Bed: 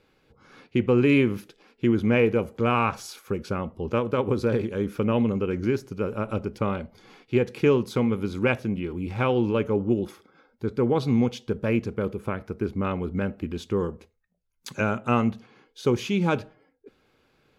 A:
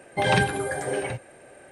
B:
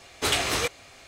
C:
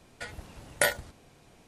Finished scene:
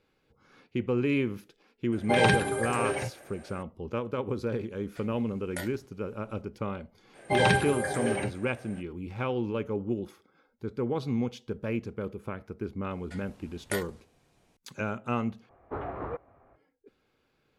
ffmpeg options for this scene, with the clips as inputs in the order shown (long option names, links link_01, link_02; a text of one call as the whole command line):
ffmpeg -i bed.wav -i cue0.wav -i cue1.wav -i cue2.wav -filter_complex "[1:a]asplit=2[link_01][link_02];[3:a]asplit=2[link_03][link_04];[0:a]volume=-7.5dB[link_05];[2:a]lowpass=frequency=1200:width=0.5412,lowpass=frequency=1200:width=1.3066[link_06];[link_05]asplit=2[link_07][link_08];[link_07]atrim=end=15.494[link_09];[link_06]atrim=end=1.07,asetpts=PTS-STARTPTS,volume=-5.5dB[link_10];[link_08]atrim=start=16.556[link_11];[link_01]atrim=end=1.71,asetpts=PTS-STARTPTS,volume=-2dB,afade=type=in:duration=0.004:curve=hsin,afade=type=out:start_time=1.706:duration=0.004:curve=hsin,adelay=1920[link_12];[link_03]atrim=end=1.67,asetpts=PTS-STARTPTS,volume=-13.5dB,afade=type=in:duration=0.004:curve=hsin,afade=type=out:start_time=1.666:duration=0.004:curve=hsin,adelay=4750[link_13];[link_02]atrim=end=1.71,asetpts=PTS-STARTPTS,volume=-2dB,afade=type=in:duration=0.05,afade=type=out:start_time=1.66:duration=0.05,adelay=7130[link_14];[link_04]atrim=end=1.67,asetpts=PTS-STARTPTS,volume=-9dB,afade=type=in:duration=0.004:curve=hsin,afade=type=out:start_time=1.666:duration=0.004:curve=hsin,adelay=12900[link_15];[link_09][link_10]acrossfade=duration=0.004:curve1=hsin:curve2=hsin[link_16];[link_16][link_11]acrossfade=duration=0.004:curve1=hsin:curve2=hsin[link_17];[link_17][link_12][link_13][link_14][link_15]amix=inputs=5:normalize=0" out.wav